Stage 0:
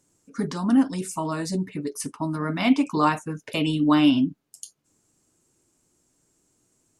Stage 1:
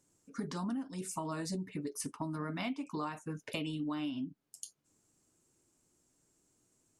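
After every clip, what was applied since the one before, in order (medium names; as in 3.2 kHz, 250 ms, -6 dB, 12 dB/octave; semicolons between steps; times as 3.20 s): compression 16:1, threshold -28 dBFS, peak gain reduction 16 dB; trim -6 dB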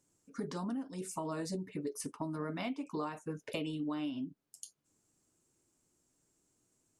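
dynamic bell 480 Hz, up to +7 dB, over -55 dBFS, Q 1.4; trim -2.5 dB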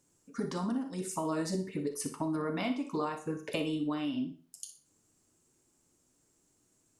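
flutter echo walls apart 10.4 m, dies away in 0.31 s; Schroeder reverb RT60 0.38 s, combs from 28 ms, DRR 9.5 dB; trim +4 dB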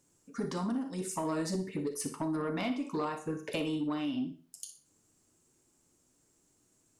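saturation -25.5 dBFS, distortion -21 dB; trim +1 dB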